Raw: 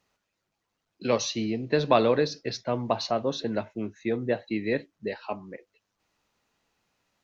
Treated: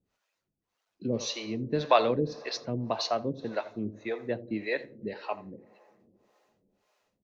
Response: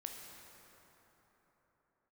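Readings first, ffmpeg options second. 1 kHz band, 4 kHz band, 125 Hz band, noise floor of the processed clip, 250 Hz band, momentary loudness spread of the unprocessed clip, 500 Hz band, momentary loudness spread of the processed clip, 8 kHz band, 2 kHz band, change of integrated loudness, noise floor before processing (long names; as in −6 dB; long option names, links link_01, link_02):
−1.0 dB, −2.0 dB, −2.5 dB, −84 dBFS, −4.0 dB, 14 LU, −4.0 dB, 14 LU, can't be measured, −2.5 dB, −3.0 dB, −81 dBFS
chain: -filter_complex "[0:a]asplit=2[link_01][link_02];[link_02]adelay=84,lowpass=frequency=2300:poles=1,volume=-14dB,asplit=2[link_03][link_04];[link_04]adelay=84,lowpass=frequency=2300:poles=1,volume=0.34,asplit=2[link_05][link_06];[link_06]adelay=84,lowpass=frequency=2300:poles=1,volume=0.34[link_07];[link_01][link_03][link_05][link_07]amix=inputs=4:normalize=0,asplit=2[link_08][link_09];[1:a]atrim=start_sample=2205[link_10];[link_09][link_10]afir=irnorm=-1:irlink=0,volume=-12dB[link_11];[link_08][link_11]amix=inputs=2:normalize=0,acrossover=split=430[link_12][link_13];[link_12]aeval=exprs='val(0)*(1-1/2+1/2*cos(2*PI*1.8*n/s))':channel_layout=same[link_14];[link_13]aeval=exprs='val(0)*(1-1/2-1/2*cos(2*PI*1.8*n/s))':channel_layout=same[link_15];[link_14][link_15]amix=inputs=2:normalize=0"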